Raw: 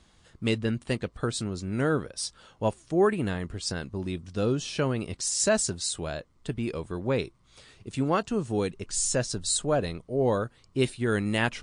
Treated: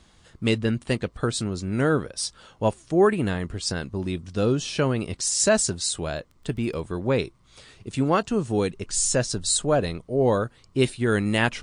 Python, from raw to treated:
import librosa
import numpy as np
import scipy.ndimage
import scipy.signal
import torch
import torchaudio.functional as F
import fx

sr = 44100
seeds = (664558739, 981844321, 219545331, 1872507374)

y = fx.dmg_crackle(x, sr, seeds[0], per_s=fx.line((6.08, 11.0), (6.84, 29.0)), level_db=-41.0, at=(6.08, 6.84), fade=0.02)
y = y * 10.0 ** (4.0 / 20.0)